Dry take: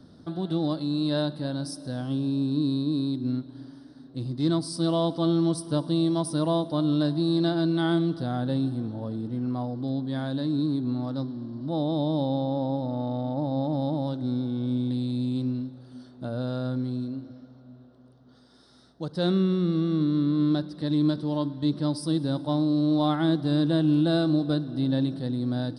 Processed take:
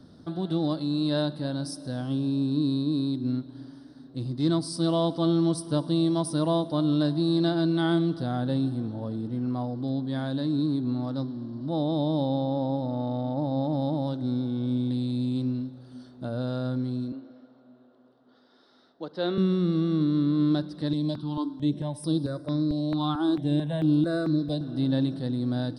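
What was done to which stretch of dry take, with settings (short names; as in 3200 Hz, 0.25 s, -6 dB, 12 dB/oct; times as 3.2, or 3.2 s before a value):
17.12–19.38 three-band isolator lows -23 dB, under 240 Hz, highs -23 dB, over 4500 Hz
20.93–24.61 step phaser 4.5 Hz 360–7100 Hz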